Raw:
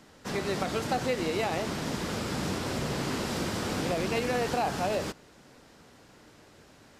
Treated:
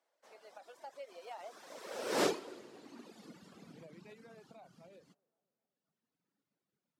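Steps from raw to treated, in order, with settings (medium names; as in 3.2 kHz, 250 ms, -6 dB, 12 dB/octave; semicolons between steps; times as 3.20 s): Doppler pass-by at 2.23 s, 29 m/s, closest 1.6 m; feedback echo behind a band-pass 258 ms, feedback 52%, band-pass 690 Hz, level -18 dB; reverb removal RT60 1.8 s; high-pass sweep 610 Hz -> 170 Hz, 1.66–3.68 s; trim +4.5 dB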